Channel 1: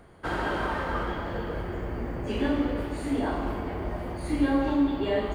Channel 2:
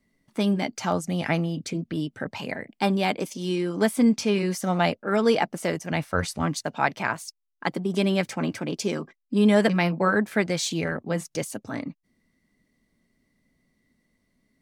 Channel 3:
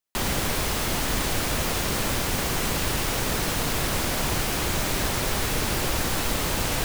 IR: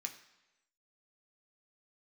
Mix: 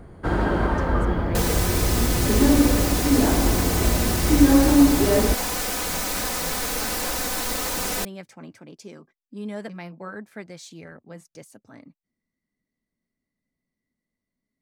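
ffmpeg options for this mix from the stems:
-filter_complex "[0:a]lowshelf=f=420:g=11,volume=1.19[s0];[1:a]volume=0.188[s1];[2:a]bass=f=250:g=-7,treble=f=4000:g=3,aecho=1:1:4:0.65,adelay=1200,volume=0.794[s2];[s0][s1][s2]amix=inputs=3:normalize=0,equalizer=f=3000:w=2.2:g=-3.5"

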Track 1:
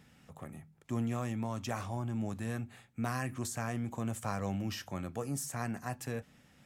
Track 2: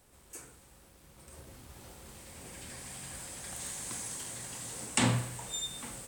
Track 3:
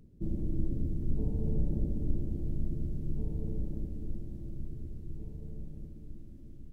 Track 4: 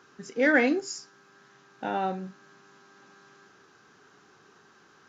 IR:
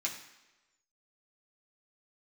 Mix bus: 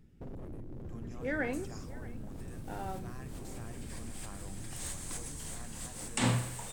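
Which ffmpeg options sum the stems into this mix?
-filter_complex "[0:a]volume=0.178,asplit=2[s0][s1];[1:a]adelay=1200,volume=1[s2];[2:a]alimiter=level_in=1.26:limit=0.0631:level=0:latency=1:release=375,volume=0.794,aeval=exprs='0.02*(abs(mod(val(0)/0.02+3,4)-2)-1)':c=same,volume=0.668[s3];[3:a]highshelf=f=4300:g=-9.5,adelay=850,volume=0.251,asplit=2[s4][s5];[s5]volume=0.1[s6];[s1]apad=whole_len=320782[s7];[s2][s7]sidechaincompress=threshold=0.002:ratio=8:attack=16:release=165[s8];[s6]aecho=0:1:632:1[s9];[s0][s8][s3][s4][s9]amix=inputs=5:normalize=0"

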